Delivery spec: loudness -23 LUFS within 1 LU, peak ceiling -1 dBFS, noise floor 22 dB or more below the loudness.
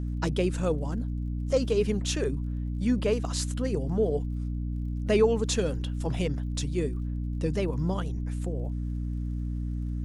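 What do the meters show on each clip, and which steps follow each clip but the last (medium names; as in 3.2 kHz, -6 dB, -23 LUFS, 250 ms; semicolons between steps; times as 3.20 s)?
tick rate 41 per s; hum 60 Hz; highest harmonic 300 Hz; hum level -28 dBFS; loudness -29.5 LUFS; peak level -10.5 dBFS; loudness target -23.0 LUFS
-> de-click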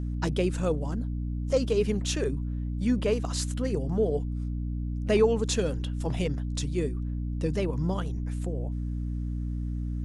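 tick rate 0 per s; hum 60 Hz; highest harmonic 300 Hz; hum level -28 dBFS
-> hum notches 60/120/180/240/300 Hz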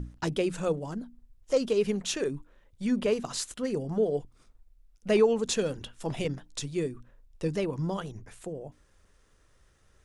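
hum not found; loudness -30.0 LUFS; peak level -11.5 dBFS; loudness target -23.0 LUFS
-> trim +7 dB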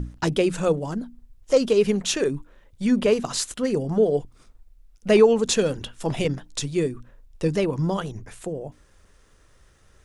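loudness -23.0 LUFS; peak level -4.5 dBFS; noise floor -57 dBFS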